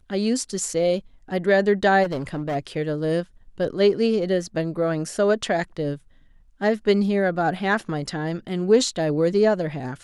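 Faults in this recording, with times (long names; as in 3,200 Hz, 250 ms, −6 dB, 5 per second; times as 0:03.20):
0:02.03–0:02.56: clipping −22.5 dBFS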